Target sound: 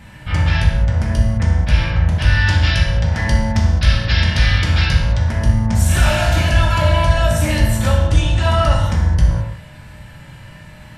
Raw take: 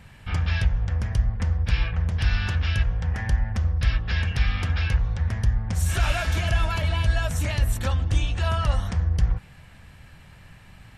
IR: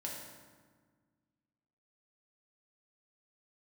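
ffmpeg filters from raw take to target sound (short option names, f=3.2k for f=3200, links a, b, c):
-filter_complex "[0:a]asettb=1/sr,asplit=3[a][b][c];[a]atrim=end=2.474[d];[b]atrim=start=2.47:end=5.19,asetpts=PTS-STARTPTS,afade=t=in:d=0.004:c=qsin,afade=t=out:st=2.716:d=0.004:c=qsin,equalizer=f=4.4k:w=1.1:g=7.5[e];[c]atrim=start=5.186[f];[d][e]acrossfade=d=0.004:c1=hsin:c2=qsin[g];[g][f]acrossfade=d=0.004:c1=qsin:c2=hsin,acontrast=24[h];[1:a]atrim=start_sample=2205,afade=t=out:st=0.27:d=0.01,atrim=end_sample=12348[i];[h][i]afir=irnorm=-1:irlink=0,volume=5.5dB"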